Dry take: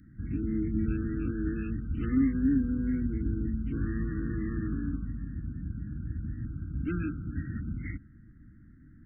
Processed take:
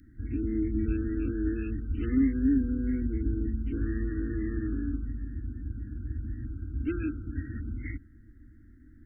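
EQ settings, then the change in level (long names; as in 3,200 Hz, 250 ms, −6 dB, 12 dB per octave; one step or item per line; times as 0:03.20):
phaser with its sweep stopped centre 400 Hz, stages 4
+4.0 dB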